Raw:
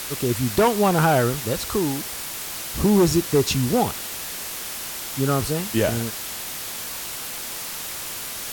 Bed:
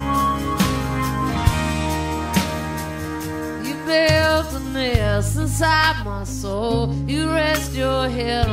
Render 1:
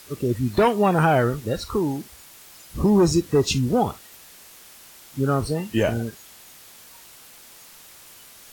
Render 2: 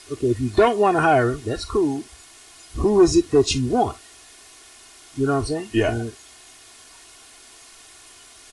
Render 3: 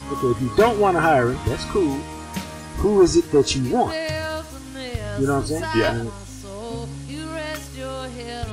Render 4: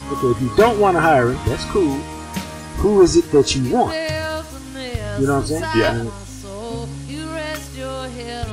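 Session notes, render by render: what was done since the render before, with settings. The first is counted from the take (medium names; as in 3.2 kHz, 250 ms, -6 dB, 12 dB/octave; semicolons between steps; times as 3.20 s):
noise print and reduce 15 dB
steep low-pass 11 kHz 96 dB/octave; comb 2.8 ms, depth 73%
add bed -10.5 dB
trim +3 dB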